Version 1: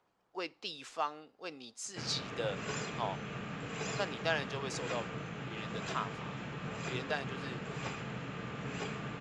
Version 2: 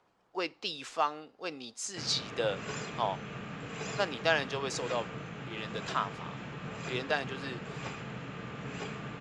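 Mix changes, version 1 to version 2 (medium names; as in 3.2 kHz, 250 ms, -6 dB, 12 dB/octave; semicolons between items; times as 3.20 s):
speech +5.5 dB; master: add treble shelf 11 kHz -4 dB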